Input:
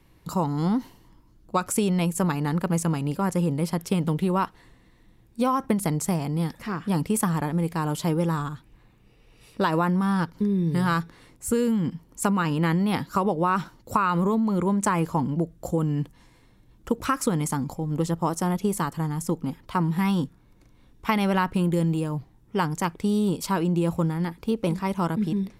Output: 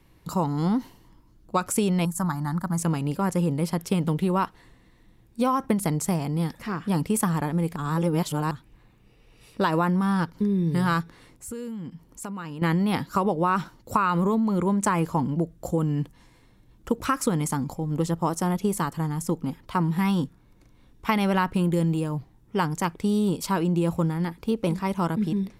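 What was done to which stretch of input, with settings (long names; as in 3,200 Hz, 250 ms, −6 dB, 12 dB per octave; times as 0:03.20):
0:02.05–0:02.79: phaser with its sweep stopped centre 1,100 Hz, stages 4
0:07.76–0:08.51: reverse
0:11.01–0:12.62: downward compressor 2 to 1, threshold −41 dBFS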